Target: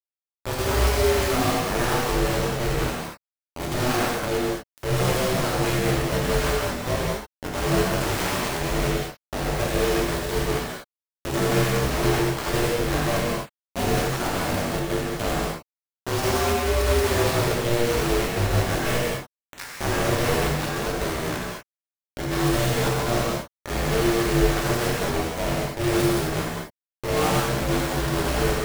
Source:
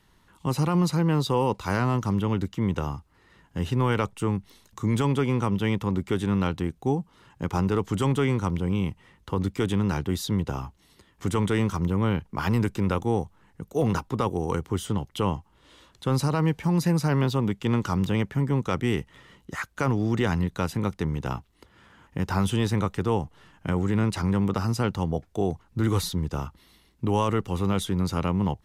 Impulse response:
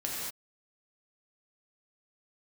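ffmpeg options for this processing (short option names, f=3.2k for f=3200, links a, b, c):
-filter_complex "[0:a]aeval=exprs='val(0)*sin(2*PI*240*n/s)':c=same,asettb=1/sr,asplit=3[a][b][c];[a]atrim=end=7.934[d];[b]atrim=start=7.93:end=8.6,asetpts=PTS-STARTPTS,afade=t=in:d=0.004:c=qsin,afade=t=out:st=0.666:d=0.004:c=qsin,aeval=exprs='0.075*(abs(mod(val(0)/0.075+3,4)-2)-1)':c=same[e];[c]atrim=start=8.596[f];[d][e]acrossfade=d=0.004:c1=hsin:c2=qsin[g];[g][f]acrossfade=d=0.004:c1=qsin:c2=hsin,flanger=delay=15:depth=6.9:speed=0.18,acrusher=bits=4:mix=0:aa=0.000001[h];[1:a]atrim=start_sample=2205[i];[h][i]afir=irnorm=-1:irlink=0,volume=2.5dB"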